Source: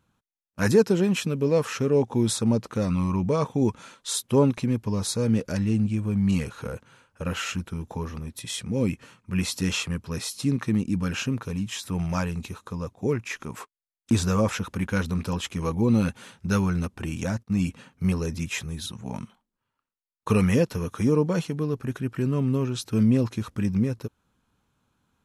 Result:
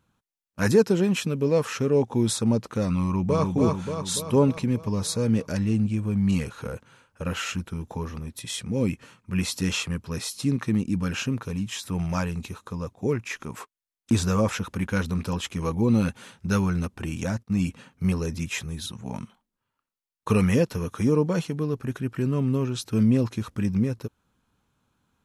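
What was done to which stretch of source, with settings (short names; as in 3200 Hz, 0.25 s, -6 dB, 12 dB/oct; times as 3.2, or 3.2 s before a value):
3–3.55 echo throw 0.29 s, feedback 60%, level -3 dB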